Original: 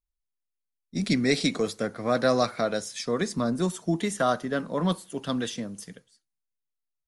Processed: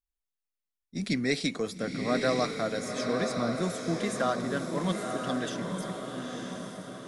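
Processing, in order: peaking EQ 1.9 kHz +2.5 dB; echo that smears into a reverb 947 ms, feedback 50%, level -4 dB; trim -5 dB

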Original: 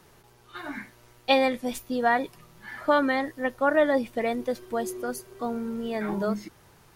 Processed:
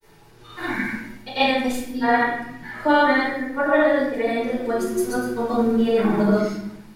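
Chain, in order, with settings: granulator, pitch spread up and down by 0 st; hum notches 60/120/180/240 Hz; reverberation RT60 0.75 s, pre-delay 4 ms, DRR -8 dB; level rider gain up to 8.5 dB; trim -5.5 dB

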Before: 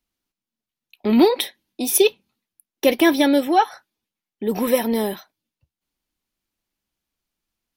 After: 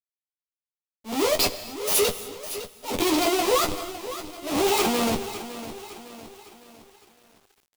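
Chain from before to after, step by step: sawtooth pitch modulation +10 st, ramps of 972 ms; Schmitt trigger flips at -30 dBFS; peaking EQ 1.6 kHz -11 dB 0.63 oct; slow attack 176 ms; bass shelf 200 Hz -10.5 dB; early reflections 10 ms -5 dB, 22 ms -9 dB; on a send at -12.5 dB: reverberation, pre-delay 3 ms; on the sum: bit-crushed delay 557 ms, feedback 55%, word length 8-bit, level -12.5 dB; trim +3.5 dB

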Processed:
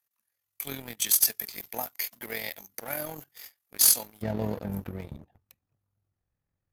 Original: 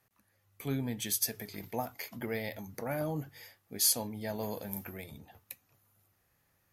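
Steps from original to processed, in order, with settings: tilt EQ +3.5 dB/octave, from 4.21 s -3 dB/octave; waveshaping leveller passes 3; AM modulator 43 Hz, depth 40%; trim -7 dB

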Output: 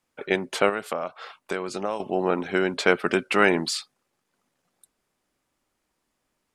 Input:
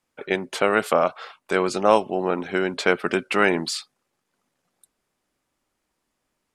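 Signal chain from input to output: 0.69–2.00 s: compression 5:1, threshold -26 dBFS, peak gain reduction 14.5 dB

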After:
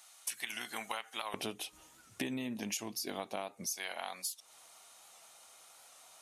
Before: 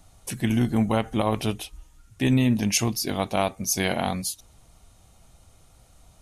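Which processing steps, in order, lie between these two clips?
high-pass 1.4 kHz 12 dB/octave, from 1.34 s 290 Hz, from 3.66 s 840 Hz; compression 16:1, threshold -39 dBFS, peak gain reduction 21.5 dB; warped record 78 rpm, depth 100 cents; trim +4 dB

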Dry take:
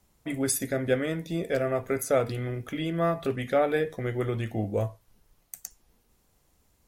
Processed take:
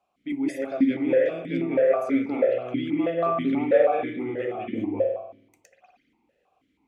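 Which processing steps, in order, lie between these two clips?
saturation -12 dBFS, distortion -27 dB; reverberation RT60 0.95 s, pre-delay 185 ms, DRR -4 dB; stepped vowel filter 6.2 Hz; trim +8.5 dB

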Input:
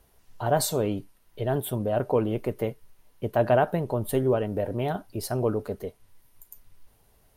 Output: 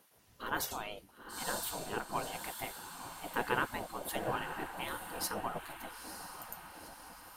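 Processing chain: echo that smears into a reverb 929 ms, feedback 55%, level -8.5 dB; spectral gate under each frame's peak -15 dB weak

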